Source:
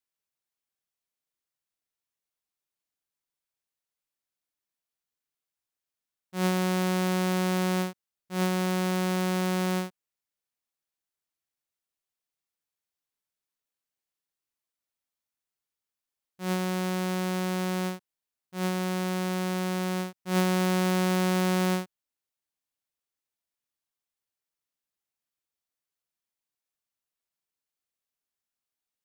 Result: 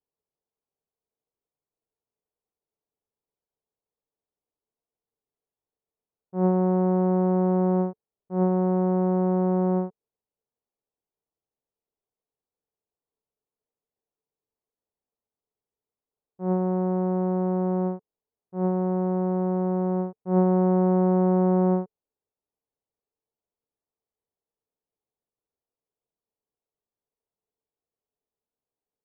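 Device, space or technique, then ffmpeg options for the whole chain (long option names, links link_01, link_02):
under water: -af "lowpass=frequency=940:width=0.5412,lowpass=frequency=940:width=1.3066,equalizer=frequency=440:width_type=o:width=0.25:gain=10.5,volume=4.5dB"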